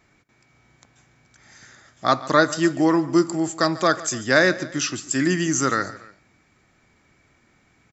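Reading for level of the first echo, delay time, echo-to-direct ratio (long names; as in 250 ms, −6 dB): −18.5 dB, 143 ms, −17.5 dB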